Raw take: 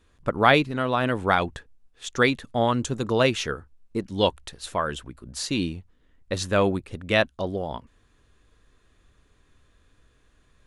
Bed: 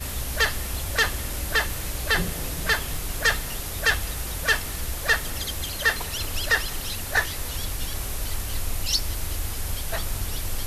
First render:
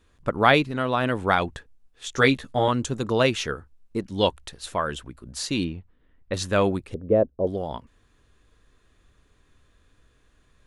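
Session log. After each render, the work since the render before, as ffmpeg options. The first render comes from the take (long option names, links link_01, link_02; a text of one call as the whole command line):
ffmpeg -i in.wav -filter_complex "[0:a]asettb=1/sr,asplit=3[link_01][link_02][link_03];[link_01]atrim=end=2.074[link_04];[link_02]atrim=start=2.07:end=2.68,asetpts=PTS-STARTPTS,afade=type=in:duration=0.004:curve=qsin,afade=type=out:start_time=0.606:duration=0.004:curve=qsin,asplit=2[link_05][link_06];[link_06]adelay=15,volume=-3.5dB[link_07];[link_05][link_07]amix=inputs=2:normalize=0,atrim=end_sample=26901[link_08];[link_03]atrim=start=2.676[link_09];[link_04][link_08]acrossfade=duration=0.004:curve1=hsin:curve2=qsin[link_10];[link_10][link_09]acrossfade=duration=0.004:curve1=qsin:curve2=hsin,asettb=1/sr,asplit=3[link_11][link_12][link_13];[link_11]atrim=end=5.644[link_14];[link_12]atrim=start=5.64:end=6.34,asetpts=PTS-STARTPTS,afade=type=in:duration=0.004:curve=qsin,afade=type=out:start_time=0.696:duration=0.004:curve=qsin,lowpass=2900[link_15];[link_13]atrim=start=6.336[link_16];[link_14][link_15]acrossfade=duration=0.004:curve1=hsin:curve2=qsin[link_17];[link_17][link_16]acrossfade=duration=0.004:curve1=qsin:curve2=hsin,asettb=1/sr,asplit=3[link_18][link_19][link_20];[link_18]atrim=end=6.944[link_21];[link_19]atrim=start=6.94:end=7.47,asetpts=PTS-STARTPTS,afade=type=in:duration=0.004:curve=qsin,afade=type=out:start_time=0.526:duration=0.004:curve=qsin,lowpass=frequency=480:width_type=q:width=2.8[link_22];[link_20]atrim=start=7.466[link_23];[link_21][link_22]acrossfade=duration=0.004:curve1=hsin:curve2=qsin[link_24];[link_24][link_23]acrossfade=duration=0.004:curve1=qsin:curve2=hsin" out.wav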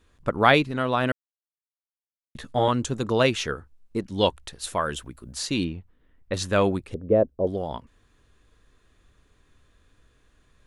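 ffmpeg -i in.wav -filter_complex "[0:a]asettb=1/sr,asplit=3[link_01][link_02][link_03];[link_01]atrim=end=4.594[link_04];[link_02]atrim=start=4.59:end=5.35,asetpts=PTS-STARTPTS,afade=type=in:duration=0.004:curve=qsin,afade=type=out:start_time=0.756:duration=0.004:curve=qsin,highshelf=frequency=8600:gain=11.5[link_05];[link_03]atrim=start=5.346[link_06];[link_04][link_05]acrossfade=duration=0.004:curve1=hsin:curve2=qsin[link_07];[link_07][link_06]acrossfade=duration=0.004:curve1=qsin:curve2=hsin,asplit=3[link_08][link_09][link_10];[link_08]atrim=end=1.12,asetpts=PTS-STARTPTS,afade=type=out:start_time=1.116:duration=0.004:curve=hsin[link_11];[link_09]atrim=start=1.12:end=2.35,asetpts=PTS-STARTPTS,volume=0[link_12];[link_10]atrim=start=2.35,asetpts=PTS-STARTPTS,afade=type=in:duration=0.004:curve=hsin[link_13];[link_11][link_12][link_13]concat=n=3:v=0:a=1" out.wav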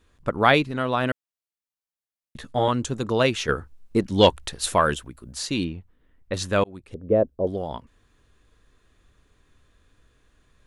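ffmpeg -i in.wav -filter_complex "[0:a]asettb=1/sr,asplit=3[link_01][link_02][link_03];[link_01]atrim=end=3.484[link_04];[link_02]atrim=start=3.48:end=4.94,asetpts=PTS-STARTPTS,afade=type=in:duration=0.004:curve=qsin,afade=type=out:start_time=1.456:duration=0.004:curve=qsin,acontrast=74[link_05];[link_03]atrim=start=4.936[link_06];[link_04][link_05]acrossfade=duration=0.004:curve1=hsin:curve2=qsin[link_07];[link_07][link_06]acrossfade=duration=0.004:curve1=qsin:curve2=hsin,asplit=2[link_08][link_09];[link_08]atrim=end=6.64,asetpts=PTS-STARTPTS,afade=type=out:start_time=6.636:duration=0.004:curve=hsin[link_10];[link_09]atrim=start=6.64,asetpts=PTS-STARTPTS,afade=type=in:duration=0.49[link_11];[link_10][link_11]concat=n=2:v=0:a=1" out.wav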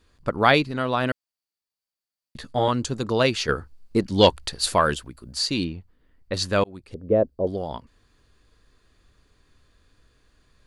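ffmpeg -i in.wav -af "equalizer=frequency=4600:width=6.9:gain=12" out.wav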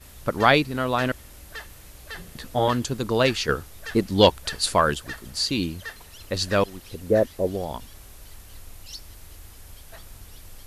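ffmpeg -i in.wav -i bed.wav -filter_complex "[1:a]volume=-15.5dB[link_01];[0:a][link_01]amix=inputs=2:normalize=0" out.wav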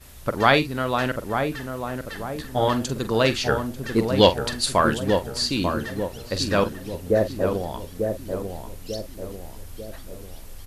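ffmpeg -i in.wav -filter_complex "[0:a]asplit=2[link_01][link_02];[link_02]adelay=45,volume=-12dB[link_03];[link_01][link_03]amix=inputs=2:normalize=0,asplit=2[link_04][link_05];[link_05]adelay=893,lowpass=frequency=950:poles=1,volume=-4.5dB,asplit=2[link_06][link_07];[link_07]adelay=893,lowpass=frequency=950:poles=1,volume=0.53,asplit=2[link_08][link_09];[link_09]adelay=893,lowpass=frequency=950:poles=1,volume=0.53,asplit=2[link_10][link_11];[link_11]adelay=893,lowpass=frequency=950:poles=1,volume=0.53,asplit=2[link_12][link_13];[link_13]adelay=893,lowpass=frequency=950:poles=1,volume=0.53,asplit=2[link_14][link_15];[link_15]adelay=893,lowpass=frequency=950:poles=1,volume=0.53,asplit=2[link_16][link_17];[link_17]adelay=893,lowpass=frequency=950:poles=1,volume=0.53[link_18];[link_04][link_06][link_08][link_10][link_12][link_14][link_16][link_18]amix=inputs=8:normalize=0" out.wav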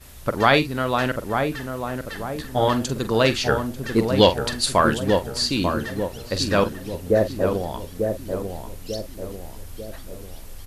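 ffmpeg -i in.wav -af "volume=1.5dB,alimiter=limit=-3dB:level=0:latency=1" out.wav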